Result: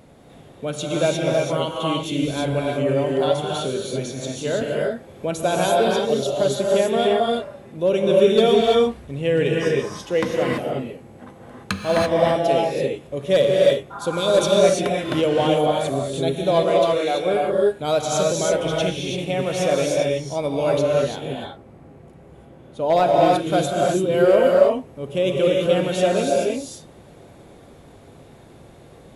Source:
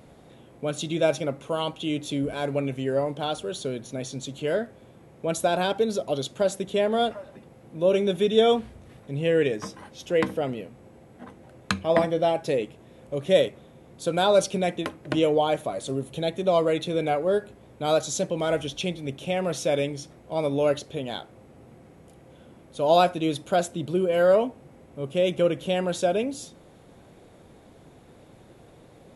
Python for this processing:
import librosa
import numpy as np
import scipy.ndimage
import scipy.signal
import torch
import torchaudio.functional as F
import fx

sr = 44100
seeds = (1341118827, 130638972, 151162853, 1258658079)

y = fx.spec_repair(x, sr, seeds[0], start_s=13.94, length_s=0.36, low_hz=660.0, high_hz=1900.0, source='after')
y = fx.highpass(y, sr, hz=380.0, slope=12, at=(16.63, 17.15))
y = fx.high_shelf(y, sr, hz=2900.0, db=-10.0, at=(21.11, 23.26))
y = np.clip(y, -10.0 ** (-12.5 / 20.0), 10.0 ** (-12.5 / 20.0))
y = fx.rev_gated(y, sr, seeds[1], gate_ms=360, shape='rising', drr_db=-2.0)
y = fx.band_squash(y, sr, depth_pct=40, at=(4.61, 5.43))
y = y * 10.0 ** (1.5 / 20.0)